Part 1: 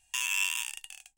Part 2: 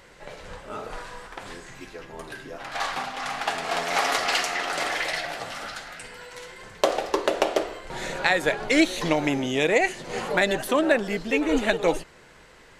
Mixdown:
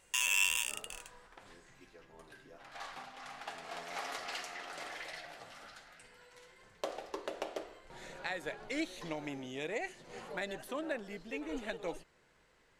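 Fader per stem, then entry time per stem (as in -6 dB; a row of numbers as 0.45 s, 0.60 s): -0.5 dB, -17.5 dB; 0.00 s, 0.00 s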